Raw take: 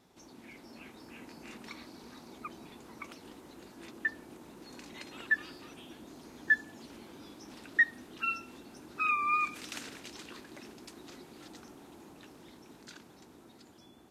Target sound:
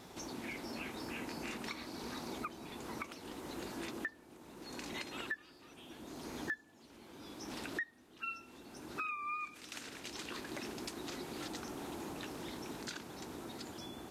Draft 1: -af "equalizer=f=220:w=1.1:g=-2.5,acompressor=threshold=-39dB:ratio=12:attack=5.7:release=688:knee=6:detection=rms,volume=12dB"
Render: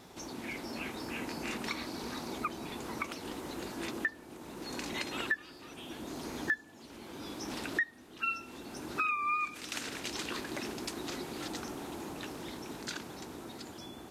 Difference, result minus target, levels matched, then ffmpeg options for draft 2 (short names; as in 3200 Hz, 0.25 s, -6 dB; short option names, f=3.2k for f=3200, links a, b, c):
compressor: peak gain reduction -8 dB
-af "equalizer=f=220:w=1.1:g=-2.5,acompressor=threshold=-48dB:ratio=12:attack=5.7:release=688:knee=6:detection=rms,volume=12dB"